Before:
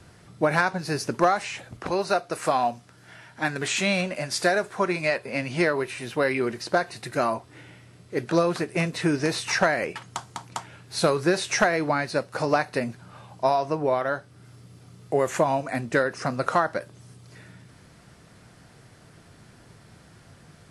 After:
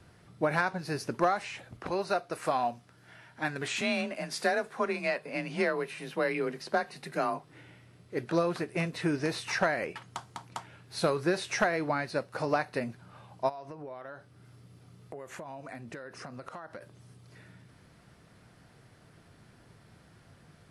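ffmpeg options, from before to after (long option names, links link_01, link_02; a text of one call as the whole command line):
ffmpeg -i in.wav -filter_complex "[0:a]asettb=1/sr,asplit=3[link_01][link_02][link_03];[link_01]atrim=end=3.814[link_04];[link_02]atrim=start=3.81:end=7.52,asetpts=PTS-STARTPTS,afade=type=in:duration=0.004:curve=qsin,afade=type=out:start_time=3.706:duration=0.004:curve=qsin,afreqshift=30[link_05];[link_03]atrim=start=7.516[link_06];[link_04][link_05]acrossfade=duration=0.004:curve1=hsin:curve2=qsin[link_07];[link_07][link_06]acrossfade=duration=0.004:curve1=qsin:curve2=hsin,asplit=3[link_08][link_09][link_10];[link_08]afade=type=out:start_time=13.48:duration=0.02[link_11];[link_09]acompressor=threshold=-33dB:ratio=8:attack=3.2:release=140:knee=1:detection=peak,afade=type=in:start_time=13.48:duration=0.02,afade=type=out:start_time=16.81:duration=0.02[link_12];[link_10]afade=type=in:start_time=16.81:duration=0.02[link_13];[link_11][link_12][link_13]amix=inputs=3:normalize=0,equalizer=frequency=7200:width_type=o:width=1:gain=-5,volume=-6dB" out.wav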